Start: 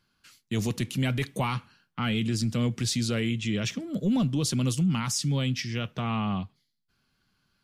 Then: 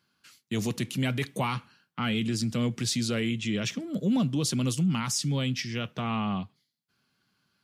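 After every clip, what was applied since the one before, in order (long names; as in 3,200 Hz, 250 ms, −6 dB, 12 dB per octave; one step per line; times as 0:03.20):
high-pass filter 120 Hz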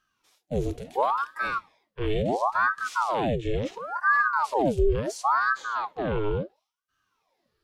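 harmonic and percussive parts rebalanced percussive −17 dB
low-shelf EQ 220 Hz +9 dB
ring modulator whose carrier an LFO sweeps 820 Hz, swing 75%, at 0.72 Hz
level +2 dB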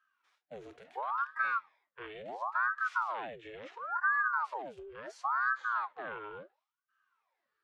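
downward compressor, threshold −25 dBFS, peak gain reduction 8.5 dB
resonant band-pass 1,500 Hz, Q 1.9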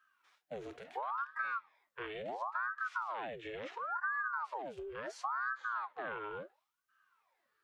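downward compressor 2.5 to 1, threshold −43 dBFS, peak gain reduction 11.5 dB
level +4 dB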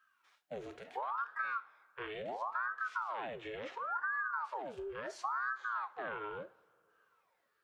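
coupled-rooms reverb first 0.33 s, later 2.8 s, from −20 dB, DRR 13 dB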